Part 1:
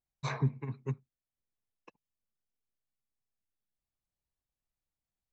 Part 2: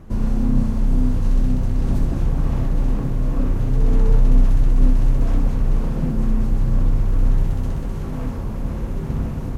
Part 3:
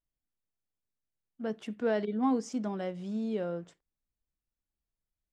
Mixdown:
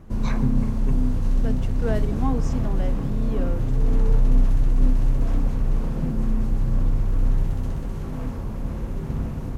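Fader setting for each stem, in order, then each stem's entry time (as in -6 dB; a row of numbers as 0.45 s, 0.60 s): +2.5 dB, -3.5 dB, +1.0 dB; 0.00 s, 0.00 s, 0.00 s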